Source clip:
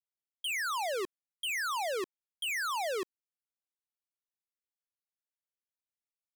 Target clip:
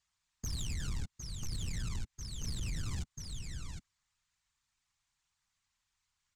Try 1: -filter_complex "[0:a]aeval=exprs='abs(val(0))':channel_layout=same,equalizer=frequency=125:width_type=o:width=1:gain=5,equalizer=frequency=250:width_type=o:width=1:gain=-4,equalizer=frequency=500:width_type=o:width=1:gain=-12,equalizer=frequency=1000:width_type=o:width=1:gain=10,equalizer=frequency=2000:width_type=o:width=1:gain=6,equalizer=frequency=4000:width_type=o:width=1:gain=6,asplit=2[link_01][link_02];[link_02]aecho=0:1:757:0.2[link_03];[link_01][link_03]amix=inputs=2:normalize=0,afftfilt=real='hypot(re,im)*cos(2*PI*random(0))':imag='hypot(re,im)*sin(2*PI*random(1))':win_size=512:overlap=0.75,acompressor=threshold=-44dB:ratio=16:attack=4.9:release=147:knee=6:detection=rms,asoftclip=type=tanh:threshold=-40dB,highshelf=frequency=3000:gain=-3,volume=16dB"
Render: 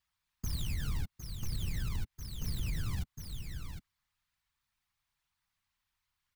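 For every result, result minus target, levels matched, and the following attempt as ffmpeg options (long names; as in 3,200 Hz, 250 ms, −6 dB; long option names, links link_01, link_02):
soft clipping: distortion −11 dB; 8,000 Hz band −5.5 dB
-filter_complex "[0:a]aeval=exprs='abs(val(0))':channel_layout=same,equalizer=frequency=125:width_type=o:width=1:gain=5,equalizer=frequency=250:width_type=o:width=1:gain=-4,equalizer=frequency=500:width_type=o:width=1:gain=-12,equalizer=frequency=1000:width_type=o:width=1:gain=10,equalizer=frequency=2000:width_type=o:width=1:gain=6,equalizer=frequency=4000:width_type=o:width=1:gain=6,asplit=2[link_01][link_02];[link_02]aecho=0:1:757:0.2[link_03];[link_01][link_03]amix=inputs=2:normalize=0,afftfilt=real='hypot(re,im)*cos(2*PI*random(0))':imag='hypot(re,im)*sin(2*PI*random(1))':win_size=512:overlap=0.75,acompressor=threshold=-44dB:ratio=16:attack=4.9:release=147:knee=6:detection=rms,asoftclip=type=tanh:threshold=-47.5dB,highshelf=frequency=3000:gain=-3,volume=16dB"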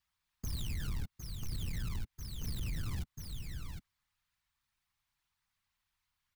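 8,000 Hz band −5.5 dB
-filter_complex "[0:a]aeval=exprs='abs(val(0))':channel_layout=same,equalizer=frequency=125:width_type=o:width=1:gain=5,equalizer=frequency=250:width_type=o:width=1:gain=-4,equalizer=frequency=500:width_type=o:width=1:gain=-12,equalizer=frequency=1000:width_type=o:width=1:gain=10,equalizer=frequency=2000:width_type=o:width=1:gain=6,equalizer=frequency=4000:width_type=o:width=1:gain=6,asplit=2[link_01][link_02];[link_02]aecho=0:1:757:0.2[link_03];[link_01][link_03]amix=inputs=2:normalize=0,afftfilt=real='hypot(re,im)*cos(2*PI*random(0))':imag='hypot(re,im)*sin(2*PI*random(1))':win_size=512:overlap=0.75,acompressor=threshold=-44dB:ratio=16:attack=4.9:release=147:knee=6:detection=rms,lowpass=frequency=7300:width_type=q:width=2.9,asoftclip=type=tanh:threshold=-47.5dB,highshelf=frequency=3000:gain=-3,volume=16dB"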